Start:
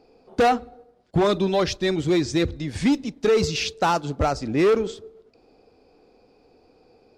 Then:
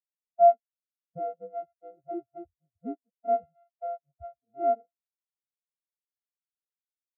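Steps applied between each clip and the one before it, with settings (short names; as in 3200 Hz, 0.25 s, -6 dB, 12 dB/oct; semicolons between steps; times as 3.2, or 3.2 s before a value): sample sorter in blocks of 64 samples; small resonant body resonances 500/1800 Hz, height 7 dB, ringing for 70 ms; spectral expander 4:1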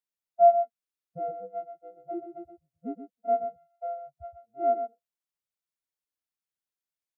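echo 0.125 s -9 dB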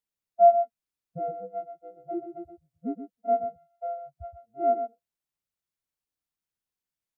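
low shelf 250 Hz +9 dB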